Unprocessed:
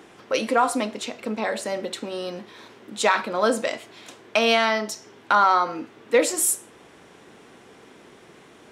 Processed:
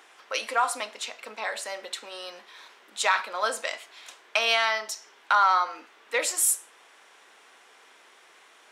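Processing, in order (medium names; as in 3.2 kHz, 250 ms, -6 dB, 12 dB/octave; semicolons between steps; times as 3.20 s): high-pass 900 Hz 12 dB/octave; trim -1 dB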